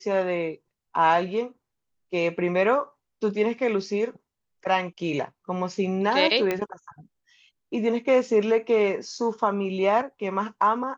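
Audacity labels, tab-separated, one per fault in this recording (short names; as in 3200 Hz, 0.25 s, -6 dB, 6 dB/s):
6.510000	6.510000	pop -12 dBFS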